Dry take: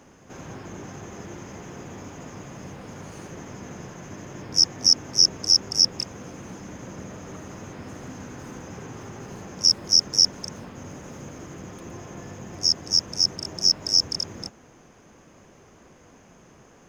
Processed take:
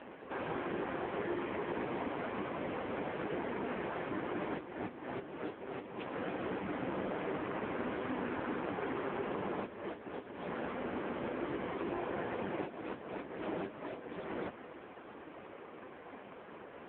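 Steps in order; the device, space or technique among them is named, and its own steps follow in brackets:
voicemail (band-pass filter 300–2,900 Hz; downward compressor 8 to 1, threshold −36 dBFS, peak gain reduction 13 dB; level +8.5 dB; AMR narrowband 5.15 kbit/s 8,000 Hz)

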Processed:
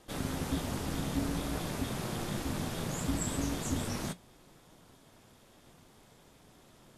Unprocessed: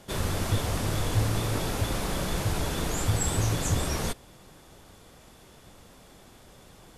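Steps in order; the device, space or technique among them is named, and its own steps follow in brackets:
alien voice (ring modulation 170 Hz; flanger 0.63 Hz, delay 6.3 ms, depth 2.9 ms, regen −67%)

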